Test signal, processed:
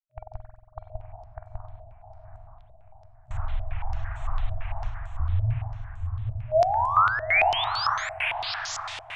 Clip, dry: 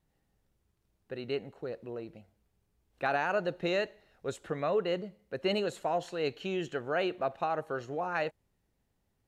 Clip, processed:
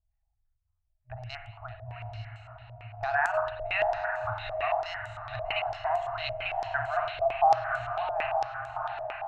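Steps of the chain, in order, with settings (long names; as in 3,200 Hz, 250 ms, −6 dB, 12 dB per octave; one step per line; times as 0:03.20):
adaptive Wiener filter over 9 samples
noise gate with hold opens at −56 dBFS
reverb reduction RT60 0.7 s
brick-wall band-stop 120–620 Hz
spectral tilt −3.5 dB per octave
in parallel at −1.5 dB: downward compressor, threshold −39 dBFS
on the sum: brickwall limiter −22.5 dBFS
on a send: feedback delay with all-pass diffusion 862 ms, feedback 41%, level −5 dB
on the sum: spring reverb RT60 1.2 s, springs 46 ms, chirp 60 ms, DRR 4.5 dB
low-pass on a step sequencer 8.9 Hz 560–7,700 Hz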